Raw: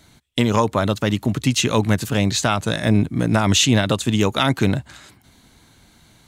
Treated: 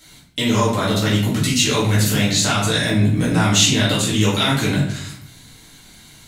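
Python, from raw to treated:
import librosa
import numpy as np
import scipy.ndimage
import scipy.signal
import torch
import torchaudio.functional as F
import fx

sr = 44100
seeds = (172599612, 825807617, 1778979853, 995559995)

p1 = fx.high_shelf(x, sr, hz=2100.0, db=11.0)
p2 = fx.over_compress(p1, sr, threshold_db=-21.0, ratio=-1.0)
p3 = p1 + (p2 * 10.0 ** (-1.5 / 20.0))
p4 = fx.room_shoebox(p3, sr, seeds[0], volume_m3=110.0, walls='mixed', distance_m=2.1)
y = p4 * 10.0 ** (-14.0 / 20.0)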